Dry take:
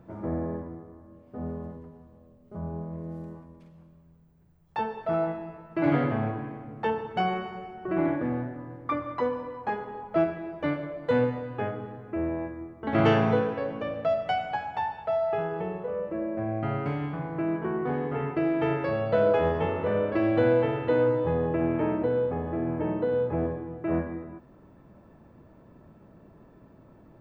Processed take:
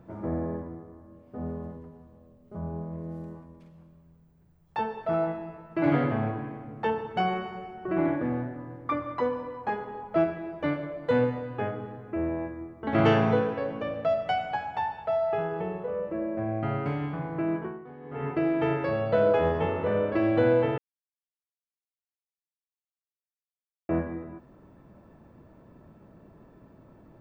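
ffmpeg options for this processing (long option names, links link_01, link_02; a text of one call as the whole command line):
ffmpeg -i in.wav -filter_complex "[0:a]asplit=5[link_01][link_02][link_03][link_04][link_05];[link_01]atrim=end=17.89,asetpts=PTS-STARTPTS,afade=type=out:start_time=17.57:duration=0.32:curve=qua:silence=0.141254[link_06];[link_02]atrim=start=17.89:end=17.95,asetpts=PTS-STARTPTS,volume=-17dB[link_07];[link_03]atrim=start=17.95:end=20.78,asetpts=PTS-STARTPTS,afade=type=in:duration=0.32:curve=qua:silence=0.141254,afade=type=out:start_time=2.826:duration=0.004:curve=hsin[link_08];[link_04]atrim=start=20.78:end=23.89,asetpts=PTS-STARTPTS,volume=0[link_09];[link_05]atrim=start=23.89,asetpts=PTS-STARTPTS,afade=type=in:duration=0.004:curve=hsin[link_10];[link_06][link_07][link_08][link_09][link_10]concat=n=5:v=0:a=1" out.wav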